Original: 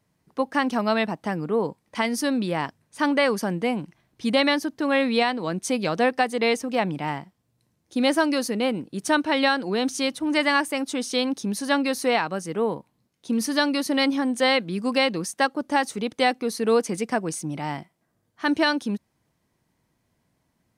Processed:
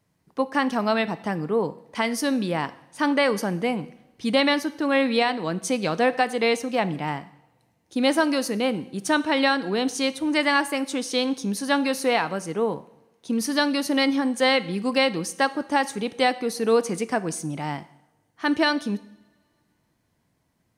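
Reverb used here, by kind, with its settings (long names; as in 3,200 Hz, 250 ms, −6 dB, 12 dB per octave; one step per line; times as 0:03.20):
coupled-rooms reverb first 0.76 s, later 2.8 s, from −25 dB, DRR 14 dB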